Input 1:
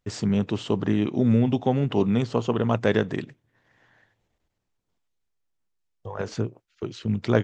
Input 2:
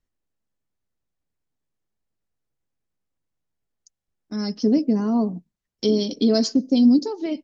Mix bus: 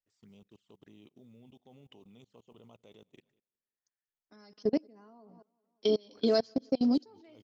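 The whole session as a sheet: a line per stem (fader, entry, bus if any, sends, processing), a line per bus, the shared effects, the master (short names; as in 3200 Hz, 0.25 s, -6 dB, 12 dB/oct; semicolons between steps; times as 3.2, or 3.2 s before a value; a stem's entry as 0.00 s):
-15.5 dB, 0.00 s, no send, echo send -23 dB, tilt +2.5 dB/oct; envelope flanger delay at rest 9.6 ms, full sweep at -25 dBFS; modulation noise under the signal 32 dB
+2.5 dB, 0.00 s, no send, echo send -21 dB, three-band isolator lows -15 dB, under 440 Hz, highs -16 dB, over 4400 Hz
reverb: off
echo: feedback echo 0.188 s, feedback 46%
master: level quantiser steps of 24 dB; upward expander 1.5:1, over -39 dBFS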